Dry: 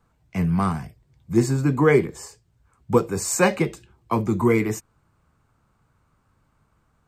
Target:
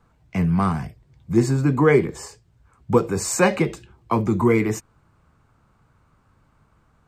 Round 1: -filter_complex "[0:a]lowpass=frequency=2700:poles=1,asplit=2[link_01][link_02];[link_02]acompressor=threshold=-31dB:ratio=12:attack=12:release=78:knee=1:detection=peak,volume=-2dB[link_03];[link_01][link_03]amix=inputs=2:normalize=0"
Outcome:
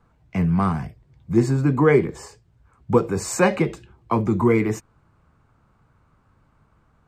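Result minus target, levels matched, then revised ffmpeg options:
4,000 Hz band −2.5 dB
-filter_complex "[0:a]lowpass=frequency=5600:poles=1,asplit=2[link_01][link_02];[link_02]acompressor=threshold=-31dB:ratio=12:attack=12:release=78:knee=1:detection=peak,volume=-2dB[link_03];[link_01][link_03]amix=inputs=2:normalize=0"

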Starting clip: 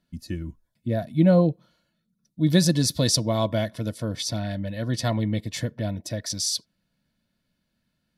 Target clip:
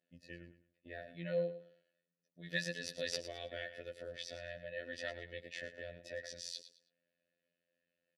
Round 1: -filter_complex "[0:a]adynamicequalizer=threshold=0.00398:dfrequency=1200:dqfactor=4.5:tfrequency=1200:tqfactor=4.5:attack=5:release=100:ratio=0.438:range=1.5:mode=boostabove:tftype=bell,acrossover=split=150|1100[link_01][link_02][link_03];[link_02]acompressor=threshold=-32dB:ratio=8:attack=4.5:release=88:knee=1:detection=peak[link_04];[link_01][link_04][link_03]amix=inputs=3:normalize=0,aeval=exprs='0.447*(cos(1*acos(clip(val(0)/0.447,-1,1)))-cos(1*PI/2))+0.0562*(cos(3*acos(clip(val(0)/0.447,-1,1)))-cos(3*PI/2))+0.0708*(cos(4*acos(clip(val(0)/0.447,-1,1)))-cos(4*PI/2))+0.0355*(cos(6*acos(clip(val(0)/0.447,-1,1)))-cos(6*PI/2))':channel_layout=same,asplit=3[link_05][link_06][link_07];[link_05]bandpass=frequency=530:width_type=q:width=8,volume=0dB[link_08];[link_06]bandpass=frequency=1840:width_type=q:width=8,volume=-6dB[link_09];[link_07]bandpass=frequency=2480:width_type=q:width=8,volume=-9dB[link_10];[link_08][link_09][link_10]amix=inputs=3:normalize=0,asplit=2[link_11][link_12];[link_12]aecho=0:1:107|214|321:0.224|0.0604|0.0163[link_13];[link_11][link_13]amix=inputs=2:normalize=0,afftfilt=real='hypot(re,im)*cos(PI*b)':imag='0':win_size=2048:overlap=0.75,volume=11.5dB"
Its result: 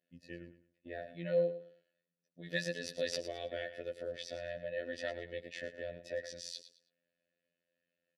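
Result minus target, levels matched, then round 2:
downward compressor: peak gain reduction −7.5 dB
-filter_complex "[0:a]adynamicequalizer=threshold=0.00398:dfrequency=1200:dqfactor=4.5:tfrequency=1200:tqfactor=4.5:attack=5:release=100:ratio=0.438:range=1.5:mode=boostabove:tftype=bell,acrossover=split=150|1100[link_01][link_02][link_03];[link_02]acompressor=threshold=-40.5dB:ratio=8:attack=4.5:release=88:knee=1:detection=peak[link_04];[link_01][link_04][link_03]amix=inputs=3:normalize=0,aeval=exprs='0.447*(cos(1*acos(clip(val(0)/0.447,-1,1)))-cos(1*PI/2))+0.0562*(cos(3*acos(clip(val(0)/0.447,-1,1)))-cos(3*PI/2))+0.0708*(cos(4*acos(clip(val(0)/0.447,-1,1)))-cos(4*PI/2))+0.0355*(cos(6*acos(clip(val(0)/0.447,-1,1)))-cos(6*PI/2))':channel_layout=same,asplit=3[link_05][link_06][link_07];[link_05]bandpass=frequency=530:width_type=q:width=8,volume=0dB[link_08];[link_06]bandpass=frequency=1840:width_type=q:width=8,volume=-6dB[link_09];[link_07]bandpass=frequency=2480:width_type=q:width=8,volume=-9dB[link_10];[link_08][link_09][link_10]amix=inputs=3:normalize=0,asplit=2[link_11][link_12];[link_12]aecho=0:1:107|214|321:0.224|0.0604|0.0163[link_13];[link_11][link_13]amix=inputs=2:normalize=0,afftfilt=real='hypot(re,im)*cos(PI*b)':imag='0':win_size=2048:overlap=0.75,volume=11.5dB"

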